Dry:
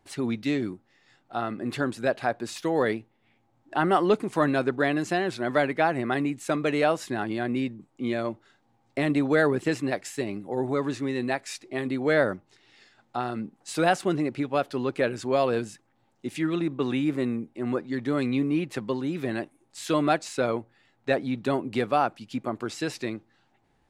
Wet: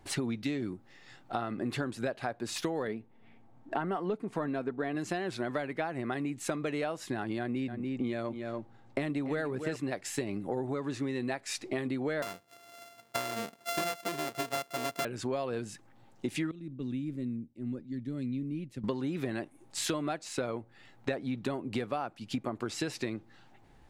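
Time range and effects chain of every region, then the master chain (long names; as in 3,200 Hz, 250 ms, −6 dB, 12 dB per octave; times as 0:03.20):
0:02.87–0:04.95: high-shelf EQ 2,500 Hz −10 dB + comb filter 4.4 ms, depth 33%
0:07.39–0:09.76: single-tap delay 289 ms −11.5 dB + one half of a high-frequency compander decoder only
0:12.22–0:15.05: samples sorted by size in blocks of 64 samples + high-pass filter 400 Hz 6 dB per octave
0:16.51–0:18.84: guitar amp tone stack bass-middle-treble 10-0-1 + hollow resonant body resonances 250/550/870 Hz, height 6 dB
whole clip: low-shelf EQ 78 Hz +8 dB; downward compressor 12 to 1, threshold −36 dBFS; level +6 dB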